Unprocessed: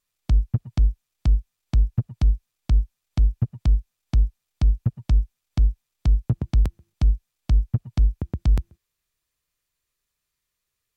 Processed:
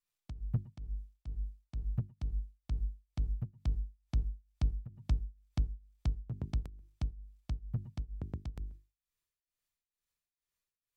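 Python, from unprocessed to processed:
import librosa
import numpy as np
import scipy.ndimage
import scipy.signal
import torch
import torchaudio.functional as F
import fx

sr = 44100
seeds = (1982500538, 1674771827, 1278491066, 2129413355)

y = fx.hum_notches(x, sr, base_hz=50, count=8)
y = fx.tremolo_shape(y, sr, shape='triangle', hz=2.2, depth_pct=90)
y = y * librosa.db_to_amplitude(-8.0)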